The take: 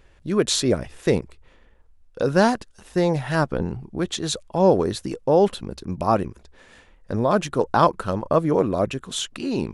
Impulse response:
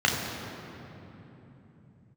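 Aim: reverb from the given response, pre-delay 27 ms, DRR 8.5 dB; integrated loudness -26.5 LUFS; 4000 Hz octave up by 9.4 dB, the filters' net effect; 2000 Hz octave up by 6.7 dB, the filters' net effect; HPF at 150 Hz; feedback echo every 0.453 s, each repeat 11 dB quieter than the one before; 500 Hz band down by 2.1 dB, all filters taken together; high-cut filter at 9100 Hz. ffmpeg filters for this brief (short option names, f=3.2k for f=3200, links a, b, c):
-filter_complex "[0:a]highpass=150,lowpass=9.1k,equalizer=f=500:t=o:g=-3,equalizer=f=2k:t=o:g=7.5,equalizer=f=4k:t=o:g=9,aecho=1:1:453|906|1359:0.282|0.0789|0.0221,asplit=2[a][b];[1:a]atrim=start_sample=2205,adelay=27[c];[b][c]afir=irnorm=-1:irlink=0,volume=-24.5dB[d];[a][d]amix=inputs=2:normalize=0,volume=-5.5dB"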